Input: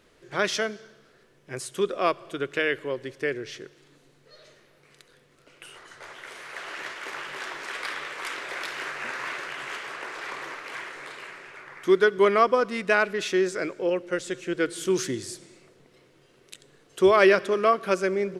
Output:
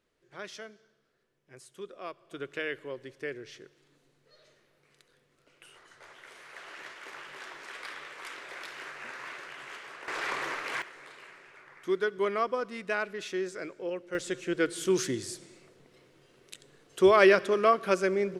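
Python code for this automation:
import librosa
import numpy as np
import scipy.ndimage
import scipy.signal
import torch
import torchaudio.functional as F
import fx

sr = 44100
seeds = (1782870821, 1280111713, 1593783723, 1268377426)

y = fx.gain(x, sr, db=fx.steps((0.0, -17.0), (2.31, -9.0), (10.08, 2.5), (10.82, -9.5), (14.15, -2.0)))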